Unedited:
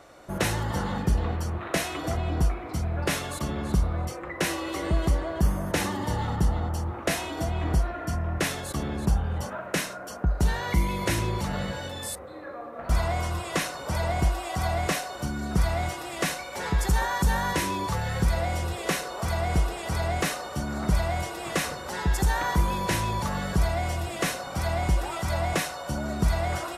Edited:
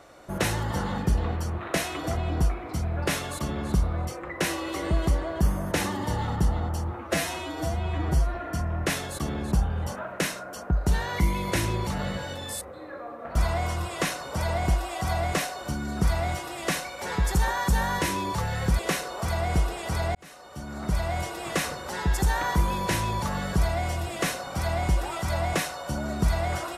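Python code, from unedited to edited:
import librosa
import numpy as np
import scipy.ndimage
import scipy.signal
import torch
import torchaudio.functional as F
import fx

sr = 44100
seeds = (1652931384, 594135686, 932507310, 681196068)

y = fx.edit(x, sr, fx.stretch_span(start_s=6.97, length_s=0.92, factor=1.5),
    fx.cut(start_s=18.33, length_s=0.46),
    fx.fade_in_span(start_s=20.15, length_s=1.08), tone=tone)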